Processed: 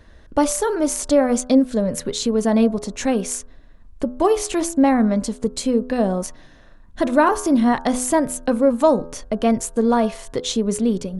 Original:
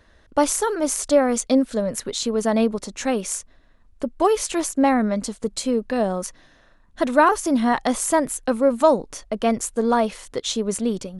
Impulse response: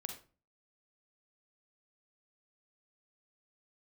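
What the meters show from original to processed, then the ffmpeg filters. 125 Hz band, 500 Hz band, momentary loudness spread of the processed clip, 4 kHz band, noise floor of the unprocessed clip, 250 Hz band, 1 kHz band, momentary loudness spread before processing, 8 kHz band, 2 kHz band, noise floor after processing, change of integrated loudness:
n/a, +1.0 dB, 8 LU, +0.5 dB, -55 dBFS, +4.0 dB, -0.5 dB, 9 LU, 0.0 dB, -1.0 dB, -46 dBFS, +2.0 dB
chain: -filter_complex "[0:a]lowshelf=f=390:g=7.5,bandreject=f=1.3k:w=28,bandreject=f=83.7:t=h:w=4,bandreject=f=167.4:t=h:w=4,bandreject=f=251.1:t=h:w=4,bandreject=f=334.8:t=h:w=4,bandreject=f=418.5:t=h:w=4,bandreject=f=502.2:t=h:w=4,bandreject=f=585.9:t=h:w=4,bandreject=f=669.6:t=h:w=4,bandreject=f=753.3:t=h:w=4,bandreject=f=837:t=h:w=4,bandreject=f=920.7:t=h:w=4,bandreject=f=1.0044k:t=h:w=4,bandreject=f=1.0881k:t=h:w=4,bandreject=f=1.1718k:t=h:w=4,bandreject=f=1.2555k:t=h:w=4,bandreject=f=1.3392k:t=h:w=4,bandreject=f=1.4229k:t=h:w=4,bandreject=f=1.5066k:t=h:w=4,bandreject=f=1.5903k:t=h:w=4,bandreject=f=1.674k:t=h:w=4,asplit=2[a][b];[b]acompressor=threshold=-27dB:ratio=6,volume=-2dB[c];[a][c]amix=inputs=2:normalize=0,volume=-2.5dB"

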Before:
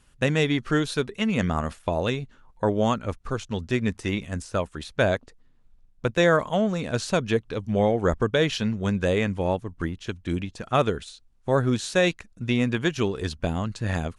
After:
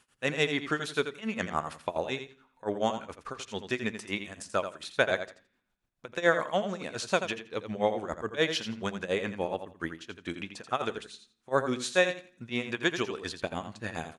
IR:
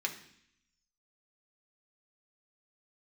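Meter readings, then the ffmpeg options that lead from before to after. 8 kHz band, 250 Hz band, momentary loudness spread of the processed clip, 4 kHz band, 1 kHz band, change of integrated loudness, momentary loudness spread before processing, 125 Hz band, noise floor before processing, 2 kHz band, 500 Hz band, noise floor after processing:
-3.5 dB, -10.0 dB, 11 LU, -3.0 dB, -4.0 dB, -6.0 dB, 9 LU, -15.0 dB, -58 dBFS, -2.0 dB, -6.0 dB, -75 dBFS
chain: -filter_complex "[0:a]highpass=f=510:p=1,tremolo=f=7:d=0.92,aecho=1:1:84|168|252:0.335|0.0603|0.0109,asplit=2[a][b];[1:a]atrim=start_sample=2205,lowpass=4.5k[c];[b][c]afir=irnorm=-1:irlink=0,volume=-16.5dB[d];[a][d]amix=inputs=2:normalize=0"

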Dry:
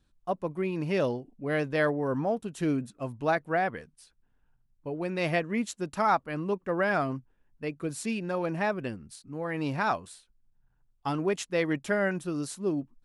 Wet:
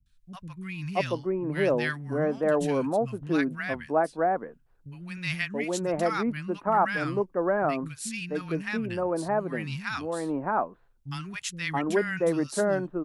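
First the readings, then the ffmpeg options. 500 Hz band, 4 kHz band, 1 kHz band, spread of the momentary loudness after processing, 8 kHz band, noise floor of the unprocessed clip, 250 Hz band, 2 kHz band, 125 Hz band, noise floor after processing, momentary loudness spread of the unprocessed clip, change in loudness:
+3.0 dB, +3.5 dB, +2.0 dB, 11 LU, +3.5 dB, -70 dBFS, +1.5 dB, +1.5 dB, +1.0 dB, -61 dBFS, 11 LU, +2.0 dB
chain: -filter_complex "[0:a]acrossover=split=180|1400[a][b][c];[c]adelay=60[d];[b]adelay=680[e];[a][e][d]amix=inputs=3:normalize=0,volume=3.5dB"

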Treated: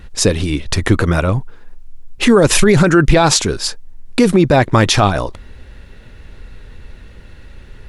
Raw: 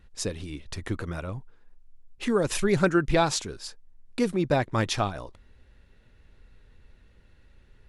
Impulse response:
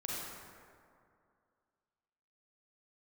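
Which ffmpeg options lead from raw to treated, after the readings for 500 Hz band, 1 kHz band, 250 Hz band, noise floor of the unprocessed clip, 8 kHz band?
+12.5 dB, +13.0 dB, +14.0 dB, -58 dBFS, +16.0 dB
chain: -af "alimiter=level_in=20dB:limit=-1dB:release=50:level=0:latency=1,volume=-1dB"

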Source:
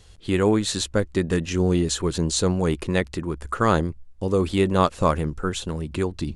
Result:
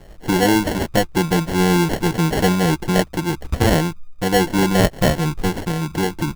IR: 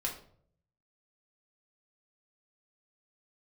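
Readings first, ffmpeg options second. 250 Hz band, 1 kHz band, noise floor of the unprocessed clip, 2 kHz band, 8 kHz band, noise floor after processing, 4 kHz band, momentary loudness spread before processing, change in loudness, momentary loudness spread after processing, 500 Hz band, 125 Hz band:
+5.5 dB, +5.0 dB, -46 dBFS, +8.0 dB, +2.5 dB, -41 dBFS, +5.0 dB, 9 LU, +4.5 dB, 7 LU, +3.0 dB, +5.0 dB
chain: -filter_complex "[0:a]aecho=1:1:6.1:0.88,asplit=2[a][b];[b]acompressor=threshold=-30dB:ratio=6,volume=1dB[c];[a][c]amix=inputs=2:normalize=0,acrusher=samples=36:mix=1:aa=0.000001"

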